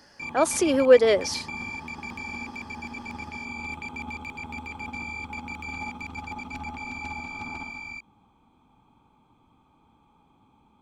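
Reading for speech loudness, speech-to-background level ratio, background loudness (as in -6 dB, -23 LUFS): -21.0 LUFS, 14.5 dB, -35.5 LUFS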